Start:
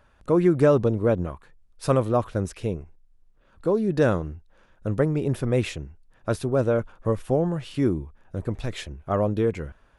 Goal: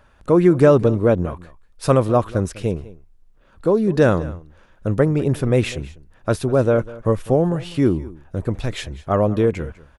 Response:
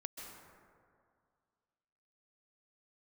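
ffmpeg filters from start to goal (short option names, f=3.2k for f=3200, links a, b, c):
-af "aecho=1:1:199:0.112,volume=5.5dB"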